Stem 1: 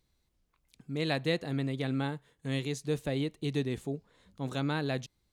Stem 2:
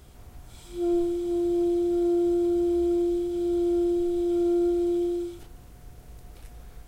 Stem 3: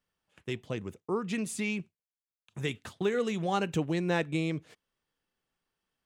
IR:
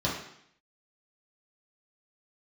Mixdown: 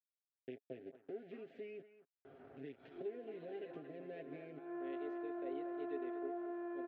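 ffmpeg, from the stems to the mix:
-filter_complex "[0:a]highpass=460,alimiter=level_in=1dB:limit=-24dB:level=0:latency=1,volume=-1dB,adelay=2350,volume=-14.5dB,asplit=2[a][b];[b]volume=-14dB[c];[1:a]acompressor=threshold=-37dB:ratio=2,aeval=exprs='(tanh(70.8*val(0)+0.35)-tanh(0.35))/70.8':c=same,adelay=2250,volume=-4dB[d];[2:a]acrusher=bits=4:dc=4:mix=0:aa=0.000001,volume=-8.5dB,asplit=3[e][f][g];[f]volume=-22.5dB[h];[g]apad=whole_len=402449[i];[d][i]sidechaincompress=threshold=-56dB:ratio=8:attack=34:release=149[j];[a][e]amix=inputs=2:normalize=0,asuperstop=centerf=1100:order=4:qfactor=0.76,acompressor=threshold=-45dB:ratio=6,volume=0dB[k];[c][h]amix=inputs=2:normalize=0,aecho=0:1:225:1[l];[j][k][l]amix=inputs=3:normalize=0,highpass=250,equalizer=f=280:t=q:w=4:g=4,equalizer=f=420:t=q:w=4:g=8,equalizer=f=680:t=q:w=4:g=7,equalizer=f=1k:t=q:w=4:g=-9,equalizer=f=1.5k:t=q:w=4:g=4,equalizer=f=2.2k:t=q:w=4:g=-4,lowpass=f=2.3k:w=0.5412,lowpass=f=2.3k:w=1.3066,aecho=1:1:7.5:0.57"

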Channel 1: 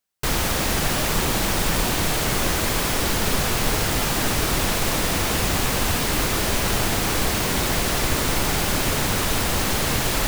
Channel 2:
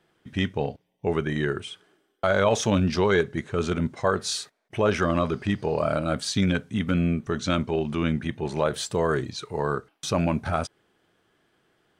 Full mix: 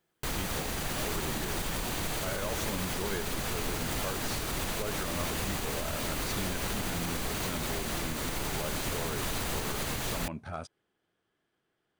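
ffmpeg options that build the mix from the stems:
-filter_complex "[0:a]bandreject=f=5.3k:w=16,alimiter=limit=-17.5dB:level=0:latency=1:release=469,volume=-3.5dB[a];[1:a]asoftclip=type=hard:threshold=-10.5dB,volume=-12.5dB[b];[a][b]amix=inputs=2:normalize=0,alimiter=limit=-22.5dB:level=0:latency=1:release=123"

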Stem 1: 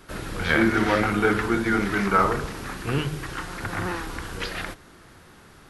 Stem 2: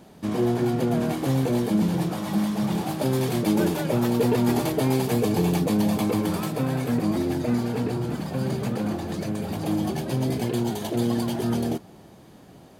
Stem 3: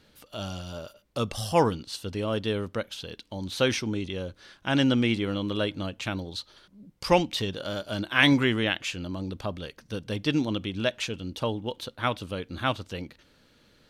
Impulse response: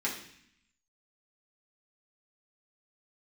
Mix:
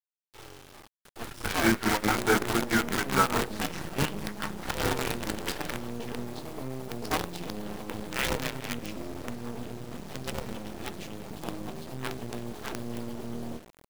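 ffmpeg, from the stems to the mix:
-filter_complex "[0:a]equalizer=f=880:w=5.6:g=6.5,tremolo=f=4.7:d=0.88,bandreject=f=60:t=h:w=6,bandreject=f=120:t=h:w=6,bandreject=f=180:t=h:w=6,bandreject=f=240:t=h:w=6,bandreject=f=300:t=h:w=6,bandreject=f=360:t=h:w=6,bandreject=f=420:t=h:w=6,bandreject=f=480:t=h:w=6,bandreject=f=540:t=h:w=6,adelay=1050,volume=-2dB,asplit=2[a][b];[b]volume=-21.5dB[c];[1:a]highshelf=f=2k:g=-7,bandreject=f=102.3:t=h:w=4,bandreject=f=204.6:t=h:w=4,bandreject=f=306.9:t=h:w=4,bandreject=f=409.2:t=h:w=4,bandreject=f=511.5:t=h:w=4,bandreject=f=613.8:t=h:w=4,bandreject=f=716.1:t=h:w=4,bandreject=f=818.4:t=h:w=4,bandreject=f=920.7:t=h:w=4,bandreject=f=1.023k:t=h:w=4,bandreject=f=1.1253k:t=h:w=4,bandreject=f=1.2276k:t=h:w=4,bandreject=f=1.3299k:t=h:w=4,bandreject=f=1.4322k:t=h:w=4,bandreject=f=1.5345k:t=h:w=4,bandreject=f=1.6368k:t=h:w=4,bandreject=f=1.7391k:t=h:w=4,bandreject=f=1.8414k:t=h:w=4,bandreject=f=1.9437k:t=h:w=4,bandreject=f=2.046k:t=h:w=4,bandreject=f=2.1483k:t=h:w=4,bandreject=f=2.2506k:t=h:w=4,bandreject=f=2.3529k:t=h:w=4,bandreject=f=2.4552k:t=h:w=4,bandreject=f=2.5575k:t=h:w=4,bandreject=f=2.6598k:t=h:w=4,bandreject=f=2.7621k:t=h:w=4,bandreject=f=2.8644k:t=h:w=4,bandreject=f=2.9667k:t=h:w=4,bandreject=f=3.069k:t=h:w=4,bandreject=f=3.1713k:t=h:w=4,bandreject=f=3.2736k:t=h:w=4,bandreject=f=3.3759k:t=h:w=4,bandreject=f=3.4782k:t=h:w=4,bandreject=f=3.5805k:t=h:w=4,acompressor=threshold=-25dB:ratio=3,adelay=1800,volume=-7.5dB,asplit=2[d][e];[e]volume=-15.5dB[f];[2:a]bandreject=f=3.5k:w=11,aeval=exprs='val(0)*sgn(sin(2*PI*230*n/s))':c=same,volume=-11dB,asplit=2[g][h];[h]volume=-15.5dB[i];[3:a]atrim=start_sample=2205[j];[c][f][i]amix=inputs=3:normalize=0[k];[k][j]afir=irnorm=-1:irlink=0[l];[a][d][g][l]amix=inputs=4:normalize=0,acrusher=bits=5:dc=4:mix=0:aa=0.000001"

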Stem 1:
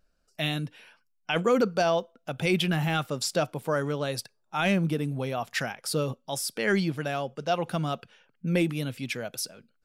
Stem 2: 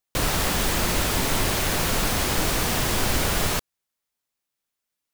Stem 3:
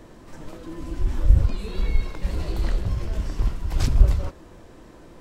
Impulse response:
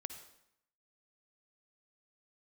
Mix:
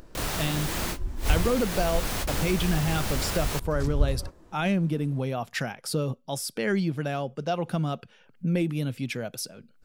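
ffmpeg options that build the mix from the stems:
-filter_complex "[0:a]lowshelf=f=440:g=7.5,acompressor=mode=upward:threshold=-34dB:ratio=2.5,volume=-1.5dB,asplit=2[a][b];[1:a]volume=-5.5dB[c];[2:a]adynamicequalizer=threshold=0.00141:dfrequency=2900:dqfactor=0.95:tfrequency=2900:tqfactor=0.95:attack=5:release=100:ratio=0.375:range=3:mode=cutabove:tftype=bell,volume=-8.5dB[d];[b]apad=whole_len=226418[e];[c][e]sidechaingate=range=-32dB:threshold=-52dB:ratio=16:detection=peak[f];[a][f]amix=inputs=2:normalize=0,acompressor=threshold=-25dB:ratio=2,volume=0dB[g];[d][g]amix=inputs=2:normalize=0"

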